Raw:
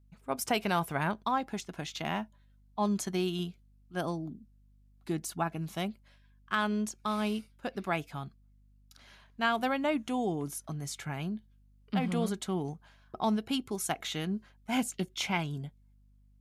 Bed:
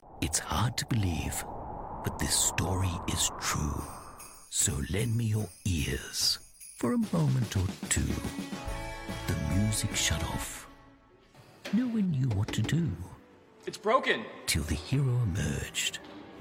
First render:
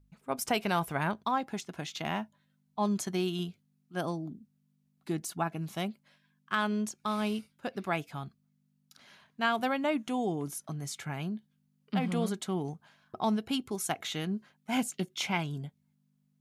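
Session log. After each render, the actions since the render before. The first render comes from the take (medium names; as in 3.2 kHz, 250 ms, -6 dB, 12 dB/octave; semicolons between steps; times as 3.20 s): de-hum 50 Hz, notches 2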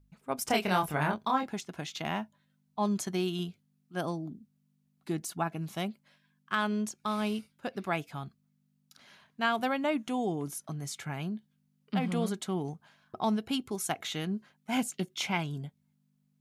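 0.44–1.51 s: doubling 27 ms -3 dB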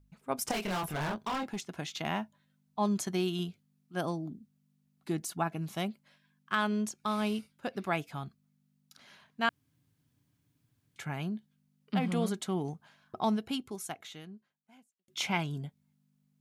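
0.51–1.57 s: hard clipper -31 dBFS; 9.49–10.96 s: room tone; 13.26–15.08 s: fade out quadratic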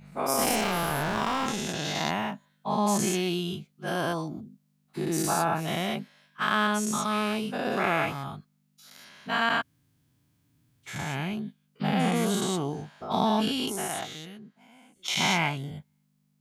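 every event in the spectrogram widened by 240 ms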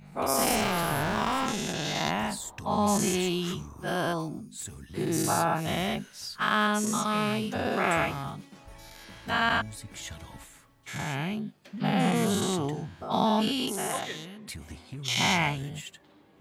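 add bed -12 dB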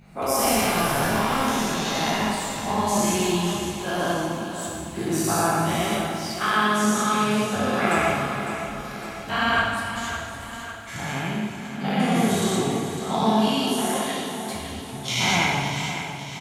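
feedback delay 555 ms, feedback 55%, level -10 dB; plate-style reverb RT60 1.8 s, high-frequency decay 0.85×, DRR -3 dB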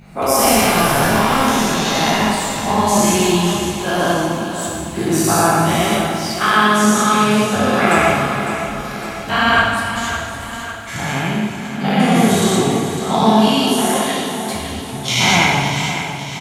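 trim +8 dB; peak limiter -1 dBFS, peak gain reduction 1 dB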